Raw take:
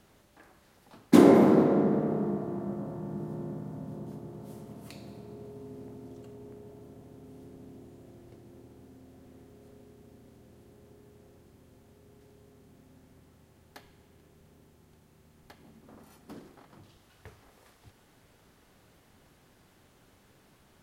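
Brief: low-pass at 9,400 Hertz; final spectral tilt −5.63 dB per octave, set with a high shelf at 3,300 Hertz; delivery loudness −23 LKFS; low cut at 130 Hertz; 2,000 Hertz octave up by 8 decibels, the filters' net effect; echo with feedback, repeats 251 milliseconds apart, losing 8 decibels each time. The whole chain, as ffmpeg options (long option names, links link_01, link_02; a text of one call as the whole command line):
ffmpeg -i in.wav -af "highpass=130,lowpass=9400,equalizer=frequency=2000:width_type=o:gain=8.5,highshelf=frequency=3300:gain=4.5,aecho=1:1:251|502|753|1004|1255:0.398|0.159|0.0637|0.0255|0.0102,volume=1.5dB" out.wav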